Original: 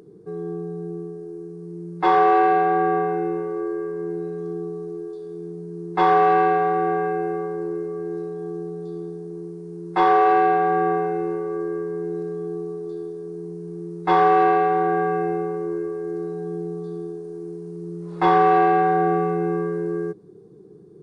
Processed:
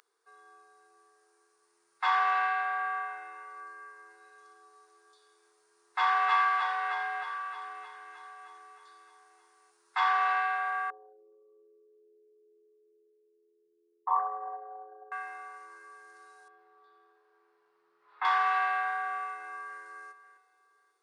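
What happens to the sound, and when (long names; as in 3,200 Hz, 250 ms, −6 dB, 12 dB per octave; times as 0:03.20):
0:05.79–0:06.30: delay throw 310 ms, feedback 65%, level −2 dB
0:10.90–0:15.12: spectral envelope exaggerated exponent 3
0:16.48–0:18.25: high-frequency loss of the air 420 metres
0:19.15–0:19.83: delay throw 540 ms, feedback 25%, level −14.5 dB
whole clip: high-pass filter 1,100 Hz 24 dB per octave; level −1.5 dB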